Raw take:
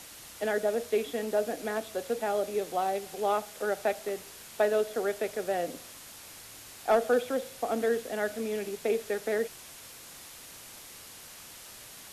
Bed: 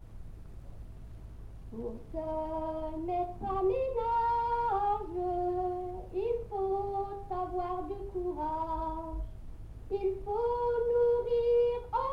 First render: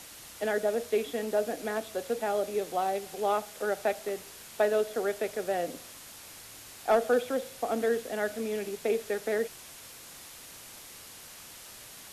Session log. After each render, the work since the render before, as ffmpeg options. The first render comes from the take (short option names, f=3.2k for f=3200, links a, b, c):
-af anull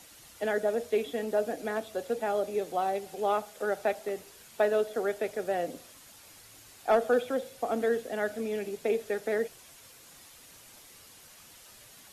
-af "afftdn=nr=7:nf=-48"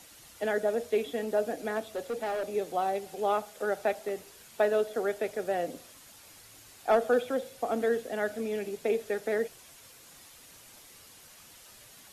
-filter_complex "[0:a]asettb=1/sr,asplit=3[a][b][c];[a]atrim=end=1.954[d];[b]atrim=start=1.95:end=2.48,asetpts=PTS-STARTPTS,afade=t=in:d=0.004:c=qsin,afade=t=out:st=0.526:d=0.004:c=qsin,volume=28.5dB,asoftclip=hard,volume=-28.5dB[e];[c]atrim=start=2.476[f];[d][e]acrossfade=d=0.004:c1=hsin:c2=qsin[g];[g][f]acrossfade=d=0.004:c1=qsin:c2=hsin"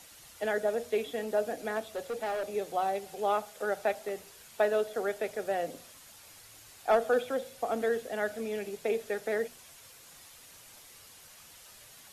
-af "equalizer=f=290:t=o:w=1.1:g=-4.5,bandreject=f=60:t=h:w=6,bandreject=f=120:t=h:w=6,bandreject=f=180:t=h:w=6,bandreject=f=240:t=h:w=6"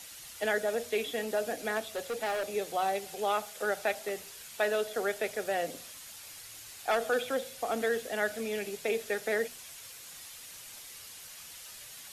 -filter_complex "[0:a]acrossover=split=1600[a][b];[a]alimiter=limit=-22.5dB:level=0:latency=1[c];[b]acontrast=58[d];[c][d]amix=inputs=2:normalize=0"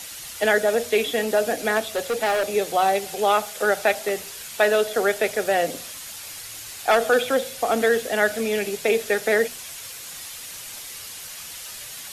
-af "volume=10.5dB"